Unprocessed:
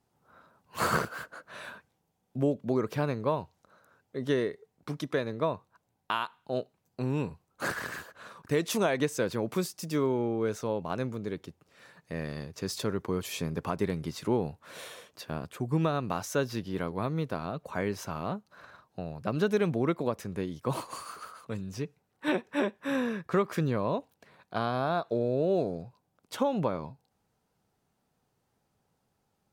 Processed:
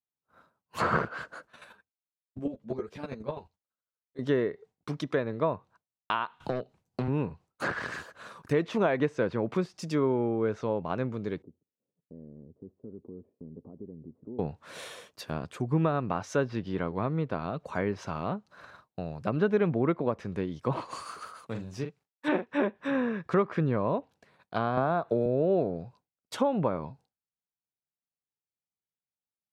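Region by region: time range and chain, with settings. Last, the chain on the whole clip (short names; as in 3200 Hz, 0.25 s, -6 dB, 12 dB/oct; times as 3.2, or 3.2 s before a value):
1.45–4.19 dynamic EQ 1100 Hz, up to -4 dB, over -46 dBFS, Q 2.6 + chopper 12 Hz, depth 65%, duty 15% + ensemble effect
6.4–7.08 low shelf 92 Hz +8 dB + hard clip -28 dBFS + three-band squash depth 100%
11.42–14.39 bell 240 Hz +8 dB 0.47 oct + compressor 2:1, threshold -45 dBFS + ladder low-pass 560 Hz, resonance 30%
21.46–22.52 G.711 law mismatch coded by A + HPF 63 Hz + doubler 44 ms -7 dB
24.77–25.26 resonant high shelf 6700 Hz +12.5 dB, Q 1.5 + three-band squash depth 100%
whole clip: treble ducked by the level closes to 2200 Hz, closed at -27 dBFS; expander -52 dBFS; gain +1.5 dB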